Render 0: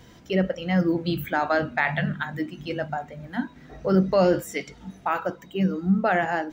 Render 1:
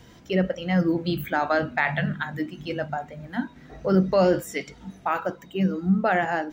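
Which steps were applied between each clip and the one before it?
wow and flutter 22 cents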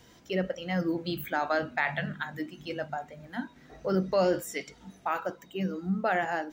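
tone controls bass -5 dB, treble +4 dB; gain -5 dB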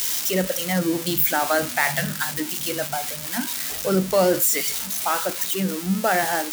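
switching spikes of -22 dBFS; gain +6.5 dB

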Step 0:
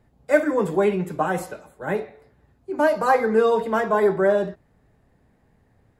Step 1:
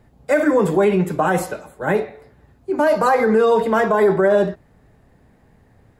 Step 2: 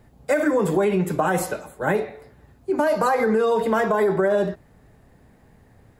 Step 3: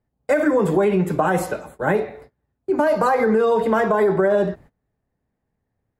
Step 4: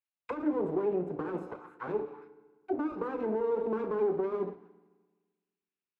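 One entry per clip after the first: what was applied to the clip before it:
limiter -15 dBFS, peak gain reduction 10 dB; gain +7.5 dB
high shelf 6400 Hz +5 dB; compressor 4:1, threshold -17 dBFS, peak gain reduction 6 dB
gate -44 dBFS, range -25 dB; high shelf 3500 Hz -7 dB; gain +2.5 dB
minimum comb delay 0.77 ms; auto-wah 400–2900 Hz, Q 2.4, down, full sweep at -20 dBFS; FDN reverb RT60 1.4 s, low-frequency decay 1.1×, high-frequency decay 0.95×, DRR 13 dB; gain -5 dB

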